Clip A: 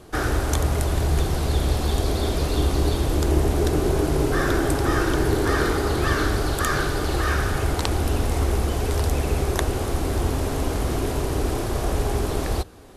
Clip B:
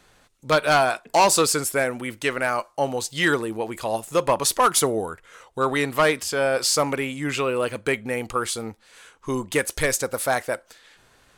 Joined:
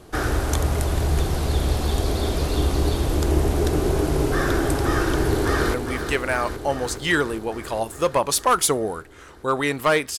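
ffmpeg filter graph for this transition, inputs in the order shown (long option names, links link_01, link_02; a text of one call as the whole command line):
ffmpeg -i cue0.wav -i cue1.wav -filter_complex "[0:a]apad=whole_dur=10.18,atrim=end=10.18,atrim=end=5.742[link_01];[1:a]atrim=start=1.868:end=6.31[link_02];[link_01][link_02]acrossfade=duration=0.004:curve1=hsin:curve2=hsin,asplit=2[link_03][link_04];[link_04]afade=type=in:start_time=5.26:duration=0.01,afade=type=out:start_time=5.74:duration=0.01,aecho=0:1:410|820|1230|1640|2050|2460|2870|3280|3690|4100|4510|4920:0.421697|0.316272|0.237204|0.177903|0.133427|0.100071|0.0750529|0.0562897|0.0422173|0.0316629|0.0237472|0.0178104[link_05];[link_03][link_05]amix=inputs=2:normalize=0" out.wav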